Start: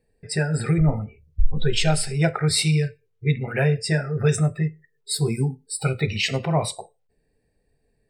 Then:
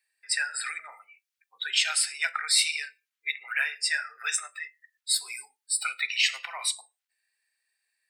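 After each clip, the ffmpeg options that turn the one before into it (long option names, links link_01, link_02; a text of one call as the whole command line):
ffmpeg -i in.wav -filter_complex "[0:a]highpass=frequency=1400:width=0.5412,highpass=frequency=1400:width=1.3066,asplit=2[link_01][link_02];[link_02]alimiter=limit=-18.5dB:level=0:latency=1:release=160,volume=2dB[link_03];[link_01][link_03]amix=inputs=2:normalize=0,volume=-3.5dB" out.wav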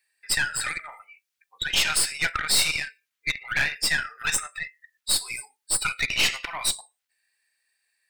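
ffmpeg -i in.wav -af "aeval=exprs='(tanh(15.8*val(0)+0.6)-tanh(0.6))/15.8':channel_layout=same,volume=7.5dB" out.wav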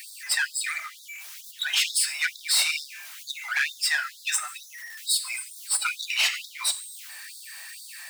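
ffmpeg -i in.wav -af "aeval=exprs='val(0)+0.5*0.0211*sgn(val(0))':channel_layout=same,afftfilt=real='re*gte(b*sr/1024,570*pow(3500/570,0.5+0.5*sin(2*PI*2.2*pts/sr)))':imag='im*gte(b*sr/1024,570*pow(3500/570,0.5+0.5*sin(2*PI*2.2*pts/sr)))':win_size=1024:overlap=0.75,volume=-1.5dB" out.wav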